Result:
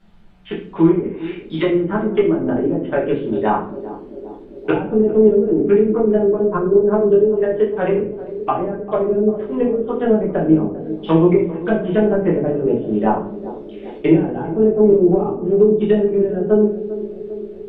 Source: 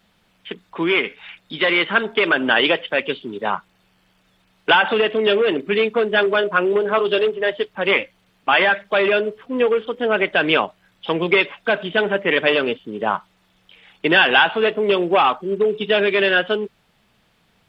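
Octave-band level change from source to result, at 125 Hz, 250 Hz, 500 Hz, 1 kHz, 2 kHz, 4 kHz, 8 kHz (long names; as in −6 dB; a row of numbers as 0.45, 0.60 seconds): +12.0 dB, +9.5 dB, +4.0 dB, −4.0 dB, −16.0 dB, below −15 dB, can't be measured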